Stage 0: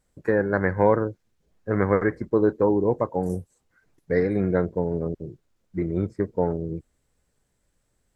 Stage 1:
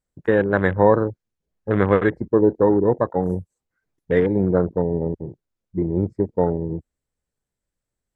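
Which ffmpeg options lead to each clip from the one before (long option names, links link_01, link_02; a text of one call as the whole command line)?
ffmpeg -i in.wav -af "afwtdn=0.0251,volume=4dB" out.wav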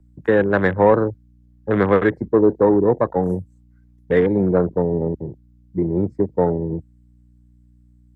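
ffmpeg -i in.wav -filter_complex "[0:a]aeval=exprs='val(0)+0.00224*(sin(2*PI*60*n/s)+sin(2*PI*2*60*n/s)/2+sin(2*PI*3*60*n/s)/3+sin(2*PI*4*60*n/s)/4+sin(2*PI*5*60*n/s)/5)':channel_layout=same,acrossover=split=120|320|1100[link_01][link_02][link_03][link_04];[link_01]alimiter=level_in=8.5dB:limit=-24dB:level=0:latency=1,volume=-8.5dB[link_05];[link_05][link_02][link_03][link_04]amix=inputs=4:normalize=0,asoftclip=type=tanh:threshold=-5dB,volume=2.5dB" out.wav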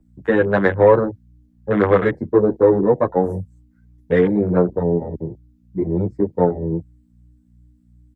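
ffmpeg -i in.wav -filter_complex "[0:a]asplit=2[link_01][link_02];[link_02]adelay=10.1,afreqshift=2.7[link_03];[link_01][link_03]amix=inputs=2:normalize=1,volume=3.5dB" out.wav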